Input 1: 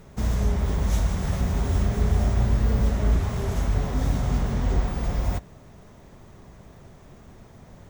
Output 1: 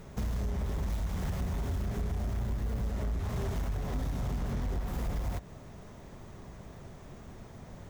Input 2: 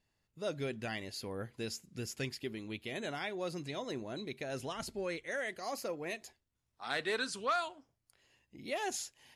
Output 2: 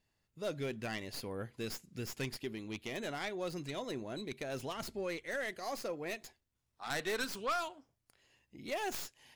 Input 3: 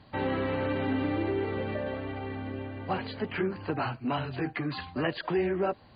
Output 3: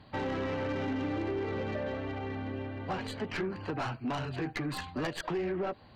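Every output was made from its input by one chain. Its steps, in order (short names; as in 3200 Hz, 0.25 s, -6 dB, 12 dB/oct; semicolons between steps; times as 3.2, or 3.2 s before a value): tracing distortion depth 0.13 ms; compressor, threshold -27 dBFS; soft clip -26 dBFS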